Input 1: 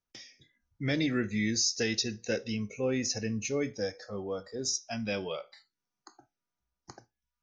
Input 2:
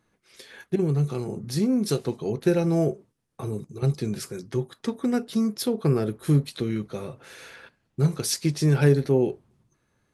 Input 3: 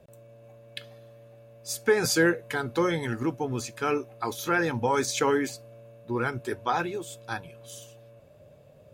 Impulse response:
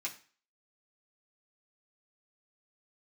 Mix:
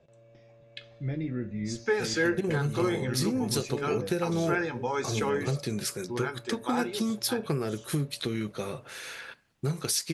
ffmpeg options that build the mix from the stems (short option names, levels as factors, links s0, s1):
-filter_complex "[0:a]lowpass=f=1600:p=1,aemphasis=mode=reproduction:type=riaa,adelay=200,volume=0.316,asplit=2[s0][s1];[s1]volume=0.631[s2];[1:a]tiltshelf=f=770:g=-4,acompressor=threshold=0.0398:ratio=4,adelay=1650,volume=1.19[s3];[2:a]lowpass=f=6500:w=0.5412,lowpass=f=6500:w=1.3066,volume=0.473,asplit=2[s4][s5];[s5]volume=0.501[s6];[3:a]atrim=start_sample=2205[s7];[s2][s6]amix=inputs=2:normalize=0[s8];[s8][s7]afir=irnorm=-1:irlink=0[s9];[s0][s3][s4][s9]amix=inputs=4:normalize=0"